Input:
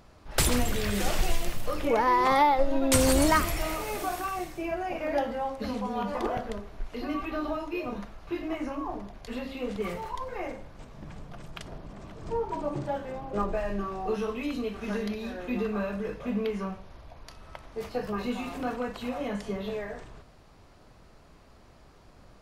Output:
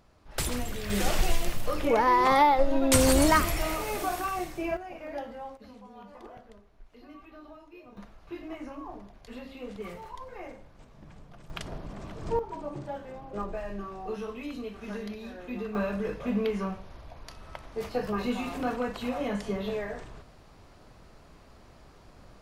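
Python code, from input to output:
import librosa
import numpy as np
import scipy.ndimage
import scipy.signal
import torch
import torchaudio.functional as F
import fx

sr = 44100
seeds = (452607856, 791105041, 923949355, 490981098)

y = fx.gain(x, sr, db=fx.steps((0.0, -6.5), (0.9, 1.0), (4.77, -9.0), (5.57, -17.0), (7.97, -7.0), (11.5, 3.0), (12.39, -5.5), (15.75, 1.5)))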